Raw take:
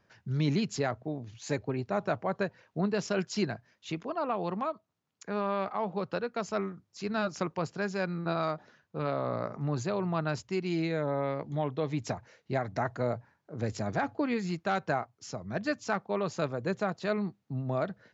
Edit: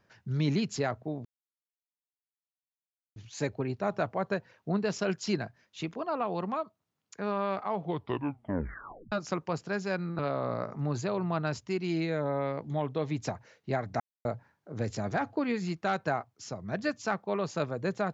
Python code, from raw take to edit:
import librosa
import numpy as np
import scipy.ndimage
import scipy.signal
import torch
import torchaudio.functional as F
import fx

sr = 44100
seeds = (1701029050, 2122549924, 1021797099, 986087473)

y = fx.edit(x, sr, fx.insert_silence(at_s=1.25, length_s=1.91),
    fx.tape_stop(start_s=5.8, length_s=1.41),
    fx.cut(start_s=8.28, length_s=0.73),
    fx.silence(start_s=12.82, length_s=0.25), tone=tone)